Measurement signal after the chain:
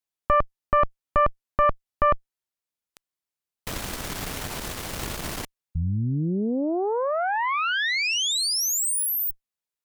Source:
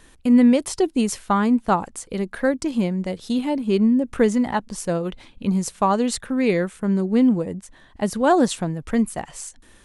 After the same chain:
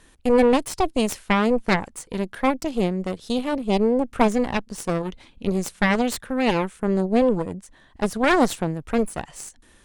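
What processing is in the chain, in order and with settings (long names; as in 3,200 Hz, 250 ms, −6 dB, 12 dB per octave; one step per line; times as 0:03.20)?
harmonic generator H 3 −6 dB, 4 −10 dB, 5 −13 dB, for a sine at −5.5 dBFS
level +1.5 dB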